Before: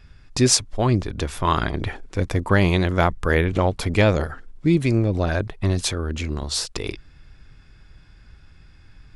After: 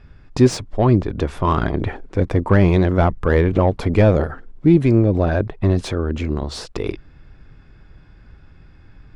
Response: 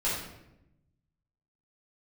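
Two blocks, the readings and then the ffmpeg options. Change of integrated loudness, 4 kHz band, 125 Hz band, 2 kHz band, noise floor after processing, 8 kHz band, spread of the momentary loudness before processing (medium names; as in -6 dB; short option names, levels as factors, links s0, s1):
+3.5 dB, -7.5 dB, +4.5 dB, -2.5 dB, -47 dBFS, under -10 dB, 11 LU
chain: -filter_complex "[0:a]asplit=2[s0][s1];[s1]highpass=f=720:p=1,volume=5.01,asoftclip=type=tanh:threshold=0.596[s2];[s0][s2]amix=inputs=2:normalize=0,lowpass=f=2100:p=1,volume=0.501,tiltshelf=f=650:g=8"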